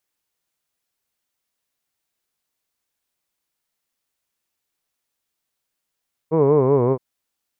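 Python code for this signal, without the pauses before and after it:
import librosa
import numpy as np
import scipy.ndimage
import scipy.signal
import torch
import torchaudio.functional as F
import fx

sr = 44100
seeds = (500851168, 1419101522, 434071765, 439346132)

y = fx.vowel(sr, seeds[0], length_s=0.67, word='hood', hz=154.0, glide_st=-4.0, vibrato_hz=5.3, vibrato_st=1.3)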